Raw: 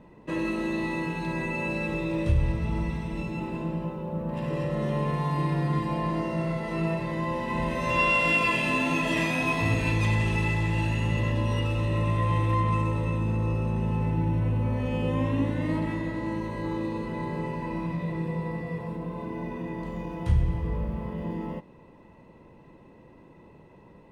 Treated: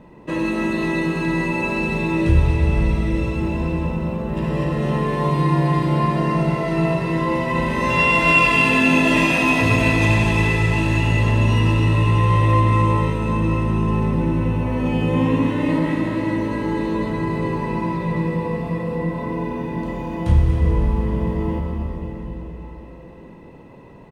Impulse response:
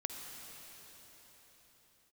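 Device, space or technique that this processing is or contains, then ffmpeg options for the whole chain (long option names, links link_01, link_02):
cave: -filter_complex "[0:a]aecho=1:1:238:0.282[link_01];[1:a]atrim=start_sample=2205[link_02];[link_01][link_02]afir=irnorm=-1:irlink=0,volume=8dB"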